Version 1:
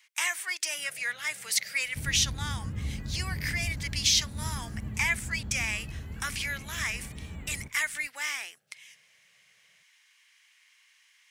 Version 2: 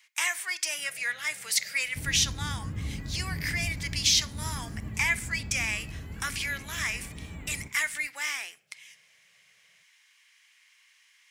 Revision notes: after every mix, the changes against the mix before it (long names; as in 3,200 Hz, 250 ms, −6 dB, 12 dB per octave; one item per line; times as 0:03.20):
reverb: on, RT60 0.50 s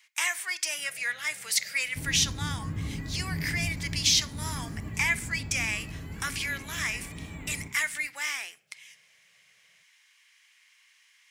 second sound: send +8.0 dB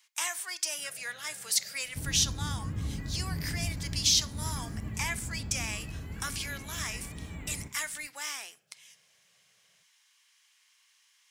speech: add parametric band 2,100 Hz −10.5 dB 0.87 octaves
second sound: send −6.5 dB